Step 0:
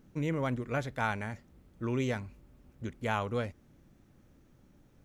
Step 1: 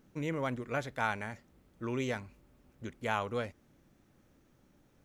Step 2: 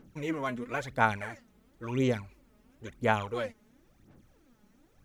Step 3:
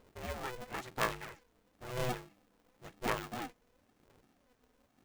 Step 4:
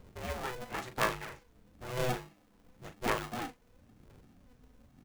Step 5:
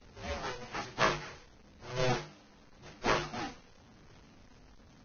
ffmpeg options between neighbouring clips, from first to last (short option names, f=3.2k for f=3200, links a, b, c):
-af "lowshelf=f=230:g=-7.5"
-af "aphaser=in_gain=1:out_gain=1:delay=4.8:decay=0.66:speed=0.97:type=sinusoidal"
-af "aeval=exprs='val(0)*sgn(sin(2*PI*250*n/s))':c=same,volume=-8dB"
-filter_complex "[0:a]asplit=2[a][b];[b]adelay=39,volume=-10dB[c];[a][c]amix=inputs=2:normalize=0,acrossover=split=200|1100|2700[d][e][f][g];[d]acompressor=mode=upward:threshold=-49dB:ratio=2.5[h];[h][e][f][g]amix=inputs=4:normalize=0,volume=2.5dB"
-af "aeval=exprs='val(0)+0.5*0.0251*sgn(val(0))':c=same,agate=range=-33dB:threshold=-27dB:ratio=3:detection=peak" -ar 16000 -c:a libvorbis -b:a 16k